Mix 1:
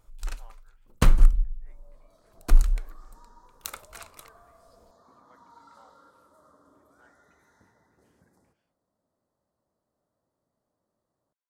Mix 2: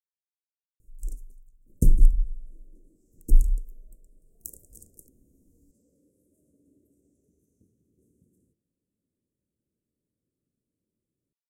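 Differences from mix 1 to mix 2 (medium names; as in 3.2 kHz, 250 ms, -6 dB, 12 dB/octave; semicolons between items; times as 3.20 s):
speech: muted; first sound: entry +0.80 s; master: add inverse Chebyshev band-stop 860–3700 Hz, stop band 50 dB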